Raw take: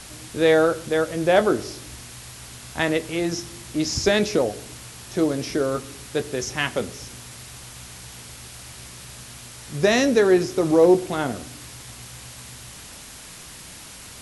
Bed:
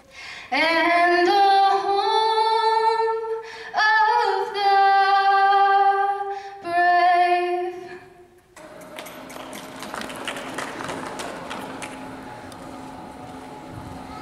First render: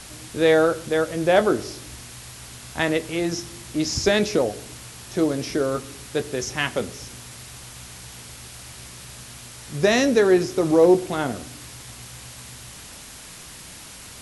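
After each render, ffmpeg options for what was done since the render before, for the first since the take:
ffmpeg -i in.wav -af anull out.wav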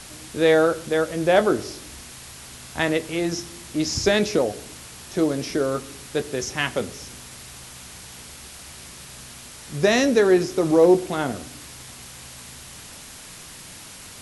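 ffmpeg -i in.wav -af "bandreject=frequency=60:width_type=h:width=4,bandreject=frequency=120:width_type=h:width=4" out.wav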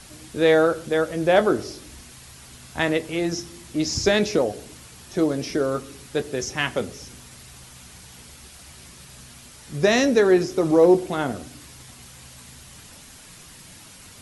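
ffmpeg -i in.wav -af "afftdn=noise_reduction=6:noise_floor=-42" out.wav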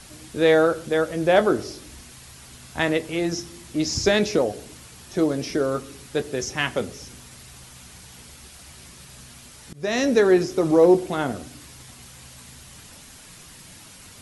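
ffmpeg -i in.wav -filter_complex "[0:a]asplit=2[link_01][link_02];[link_01]atrim=end=9.73,asetpts=PTS-STARTPTS,afade=type=out:start_time=9.726:duration=0.004:curve=hsin:silence=0.0630957[link_03];[link_02]atrim=start=9.73,asetpts=PTS-STARTPTS,afade=type=in:duration=0.4:silence=0.0630957[link_04];[link_03][link_04]concat=n=2:v=0:a=1" out.wav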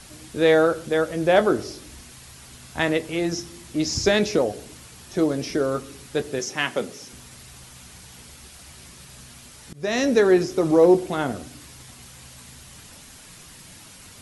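ffmpeg -i in.wav -filter_complex "[0:a]asettb=1/sr,asplit=3[link_01][link_02][link_03];[link_01]atrim=end=6.394[link_04];[link_02]atrim=start=6.39:end=7.13,asetpts=PTS-STARTPTS,afade=type=in:duration=0.004:curve=qsin,afade=type=out:start_time=0.736:duration=0.004:curve=qsin,highpass=180[link_05];[link_03]atrim=start=7.126[link_06];[link_04][link_05]acrossfade=duration=0.004:curve1=hsin:curve2=qsin[link_07];[link_07][link_06]acrossfade=duration=0.004:curve1=qsin:curve2=hsin" out.wav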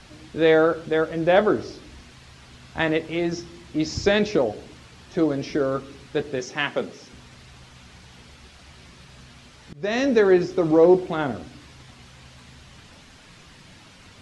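ffmpeg -i in.wav -af "lowpass=4200" out.wav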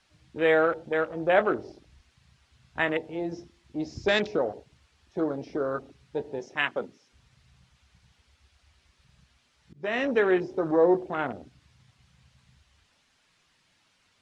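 ffmpeg -i in.wav -af "afwtdn=0.0282,lowshelf=frequency=500:gain=-10.5" out.wav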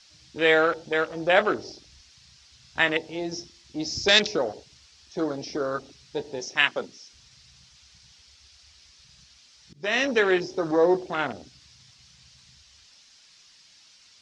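ffmpeg -i in.wav -af "crystalizer=i=4.5:c=0,lowpass=frequency=5400:width_type=q:width=2.4" out.wav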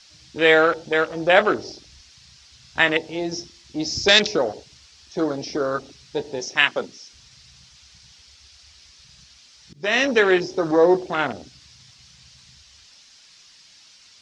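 ffmpeg -i in.wav -af "volume=4.5dB,alimiter=limit=-1dB:level=0:latency=1" out.wav

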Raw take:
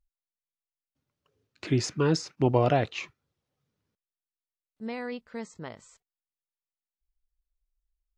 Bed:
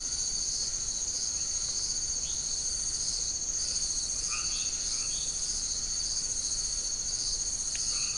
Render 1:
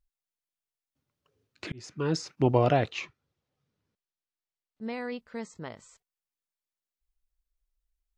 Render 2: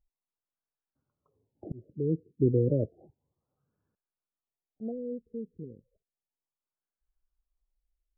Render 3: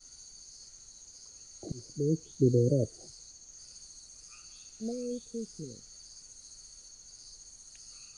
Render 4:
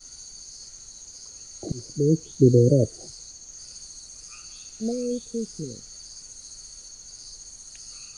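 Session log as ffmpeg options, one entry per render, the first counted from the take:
ffmpeg -i in.wav -filter_complex "[0:a]asettb=1/sr,asplit=3[link_01][link_02][link_03];[link_01]atrim=end=3.004[link_04];[link_02]atrim=start=3:end=4.93,asetpts=PTS-STARTPTS,afade=type=in:duration=0.004:curve=qsin,afade=type=out:start_time=1.926:duration=0.004:curve=qsin,lowpass=6400[link_05];[link_03]atrim=start=4.926[link_06];[link_04][link_05]acrossfade=duration=0.004:curve1=hsin:curve2=qsin[link_07];[link_07][link_06]acrossfade=duration=0.004:curve1=qsin:curve2=hsin,asplit=2[link_08][link_09];[link_08]atrim=end=1.72,asetpts=PTS-STARTPTS,afade=type=out:start_time=1.716:duration=0.004:curve=hsin[link_10];[link_09]atrim=start=1.72,asetpts=PTS-STARTPTS,afade=type=in:duration=0.59[link_11];[link_10][link_11]concat=n=2:v=0:a=1" out.wav
ffmpeg -i in.wav -af "afftfilt=real='re*lt(b*sr/1024,480*pow(1800/480,0.5+0.5*sin(2*PI*0.32*pts/sr)))':imag='im*lt(b*sr/1024,480*pow(1800/480,0.5+0.5*sin(2*PI*0.32*pts/sr)))':win_size=1024:overlap=0.75" out.wav
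ffmpeg -i in.wav -i bed.wav -filter_complex "[1:a]volume=-19.5dB[link_01];[0:a][link_01]amix=inputs=2:normalize=0" out.wav
ffmpeg -i in.wav -af "volume=8.5dB" out.wav

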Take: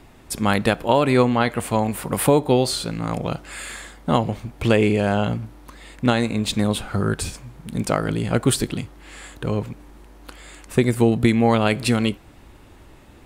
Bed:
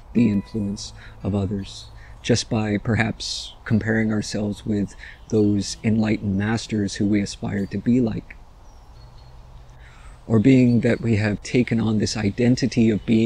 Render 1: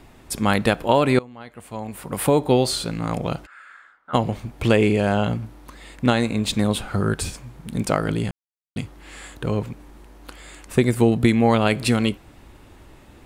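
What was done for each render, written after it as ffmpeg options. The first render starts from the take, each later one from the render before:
ffmpeg -i in.wav -filter_complex "[0:a]asplit=3[link_01][link_02][link_03];[link_01]afade=type=out:start_time=3.45:duration=0.02[link_04];[link_02]bandpass=frequency=1400:width_type=q:width=6.5,afade=type=in:start_time=3.45:duration=0.02,afade=type=out:start_time=4.13:duration=0.02[link_05];[link_03]afade=type=in:start_time=4.13:duration=0.02[link_06];[link_04][link_05][link_06]amix=inputs=3:normalize=0,asplit=4[link_07][link_08][link_09][link_10];[link_07]atrim=end=1.19,asetpts=PTS-STARTPTS,afade=type=out:start_time=1.186:duration=0.004:curve=hsin:silence=0.0668344[link_11];[link_08]atrim=start=1.19:end=8.31,asetpts=PTS-STARTPTS,afade=type=in:duration=1.26:curve=qua:silence=0.0668344,afade=type=out:start_time=7.116:duration=0.004:curve=hsin[link_12];[link_09]atrim=start=8.31:end=8.76,asetpts=PTS-STARTPTS,volume=0[link_13];[link_10]atrim=start=8.76,asetpts=PTS-STARTPTS,afade=type=in:duration=0.004:curve=hsin[link_14];[link_11][link_12][link_13][link_14]concat=n=4:v=0:a=1" out.wav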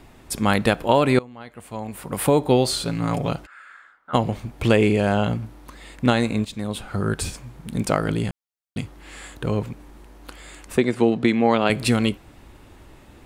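ffmpeg -i in.wav -filter_complex "[0:a]asettb=1/sr,asplit=3[link_01][link_02][link_03];[link_01]atrim=end=2.854[link_04];[link_02]atrim=start=2.85:end=3.31,asetpts=PTS-STARTPTS,afade=type=in:duration=0.004:curve=qsin,afade=type=out:start_time=0.456:duration=0.004:curve=qsin,aecho=1:1:7.1:0.61,atrim=end_sample=20286[link_05];[link_03]atrim=start=3.306[link_06];[link_04][link_05]acrossfade=duration=0.004:curve1=hsin:curve2=qsin[link_07];[link_07][link_06]acrossfade=duration=0.004:curve1=qsin:curve2=hsin,asettb=1/sr,asplit=3[link_08][link_09][link_10];[link_08]atrim=end=10.774[link_11];[link_09]atrim=start=10.77:end=11.7,asetpts=PTS-STARTPTS,afade=type=in:duration=0.004:curve=qsin,afade=type=out:start_time=0.926:duration=0.004:curve=qsin,highpass=200,lowpass=5100[link_12];[link_10]atrim=start=11.696[link_13];[link_11][link_12]acrossfade=duration=0.004:curve1=hsin:curve2=qsin[link_14];[link_14][link_13]acrossfade=duration=0.004:curve1=qsin:curve2=hsin,asplit=2[link_15][link_16];[link_15]atrim=end=6.45,asetpts=PTS-STARTPTS,afade=type=out:start_time=6.446:duration=0.004:curve=hsin:silence=0.211349[link_17];[link_16]atrim=start=6.45,asetpts=PTS-STARTPTS,afade=type=in:duration=0.8:silence=0.211349[link_18];[link_17][link_18]concat=n=2:v=0:a=1" out.wav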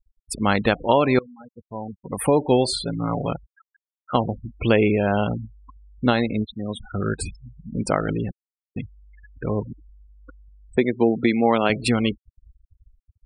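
ffmpeg -i in.wav -af "afftfilt=real='re*gte(hypot(re,im),0.0501)':imag='im*gte(hypot(re,im),0.0501)':win_size=1024:overlap=0.75,equalizer=frequency=130:width_type=o:width=1:gain=-3" out.wav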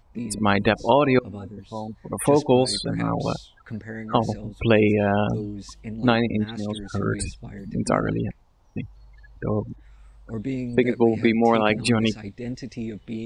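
ffmpeg -i in.wav -i bed.wav -filter_complex "[1:a]volume=-14dB[link_01];[0:a][link_01]amix=inputs=2:normalize=0" out.wav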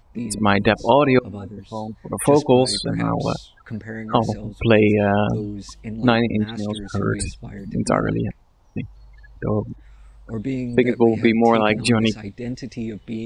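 ffmpeg -i in.wav -af "volume=3dB,alimiter=limit=-2dB:level=0:latency=1" out.wav

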